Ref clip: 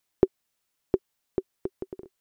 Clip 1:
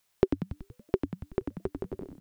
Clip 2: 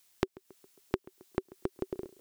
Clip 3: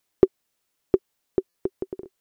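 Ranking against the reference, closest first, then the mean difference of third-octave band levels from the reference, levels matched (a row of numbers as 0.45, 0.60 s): 3, 1, 2; 1.0, 5.5, 9.5 dB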